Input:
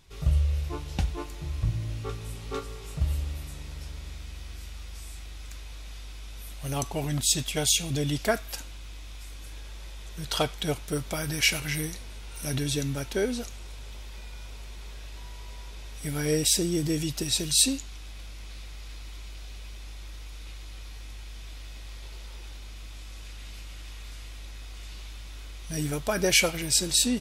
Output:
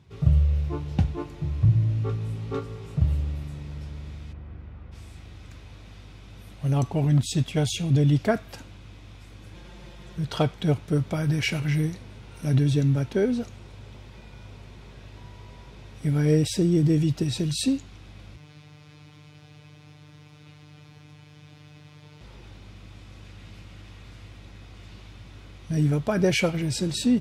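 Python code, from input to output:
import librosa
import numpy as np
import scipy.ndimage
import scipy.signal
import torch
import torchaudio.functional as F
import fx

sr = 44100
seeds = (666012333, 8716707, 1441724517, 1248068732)

y = fx.lowpass(x, sr, hz=1600.0, slope=12, at=(4.32, 4.91), fade=0.02)
y = fx.comb(y, sr, ms=5.7, depth=0.84, at=(9.54, 10.17))
y = fx.robotise(y, sr, hz=150.0, at=(18.36, 22.21))
y = scipy.signal.sosfilt(scipy.signal.butter(4, 100.0, 'highpass', fs=sr, output='sos'), y)
y = fx.riaa(y, sr, side='playback')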